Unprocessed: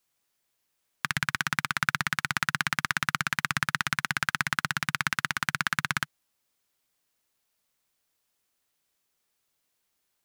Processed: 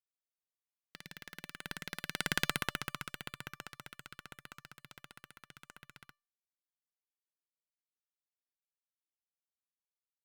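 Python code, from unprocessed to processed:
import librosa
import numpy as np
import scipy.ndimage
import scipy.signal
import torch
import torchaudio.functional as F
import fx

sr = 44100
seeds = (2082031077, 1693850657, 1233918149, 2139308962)

y = fx.tracing_dist(x, sr, depth_ms=0.41)
y = fx.doppler_pass(y, sr, speed_mps=32, closest_m=5.5, pass_at_s=2.43)
y = fx.comb_fb(y, sr, f0_hz=590.0, decay_s=0.29, harmonics='all', damping=0.0, mix_pct=40)
y = F.gain(torch.from_numpy(y), 1.0).numpy()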